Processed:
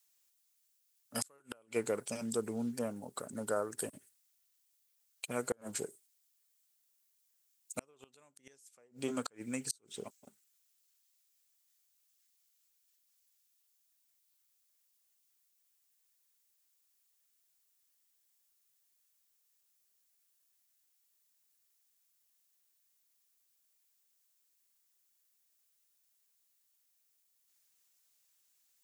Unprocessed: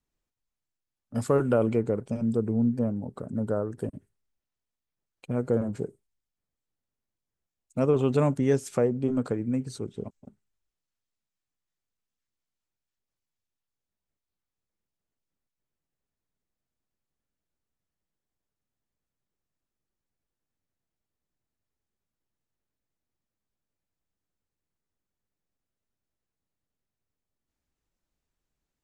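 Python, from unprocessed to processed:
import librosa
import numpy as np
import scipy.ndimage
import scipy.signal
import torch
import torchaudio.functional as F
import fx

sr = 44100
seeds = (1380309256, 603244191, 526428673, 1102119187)

y = np.diff(x, prepend=0.0)
y = fx.gate_flip(y, sr, shuts_db=-37.0, range_db=-36)
y = y * librosa.db_to_amplitude(17.0)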